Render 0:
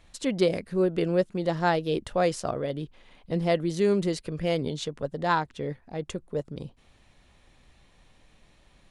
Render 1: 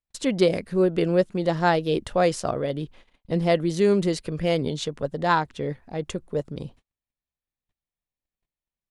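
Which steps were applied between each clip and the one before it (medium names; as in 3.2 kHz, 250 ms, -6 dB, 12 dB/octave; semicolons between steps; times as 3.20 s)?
gate -50 dBFS, range -41 dB; trim +3.5 dB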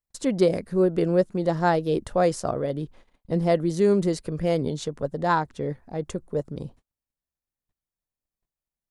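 peaking EQ 2.9 kHz -8.5 dB 1.3 oct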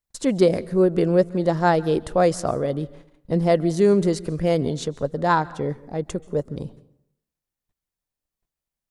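plate-style reverb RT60 0.73 s, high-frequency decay 0.6×, pre-delay 120 ms, DRR 20 dB; trim +3 dB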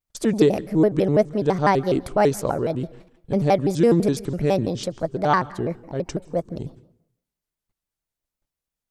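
vibrato with a chosen wave square 6 Hz, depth 250 cents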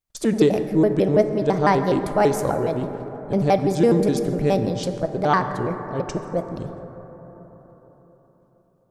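plate-style reverb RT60 4.4 s, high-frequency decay 0.25×, DRR 7.5 dB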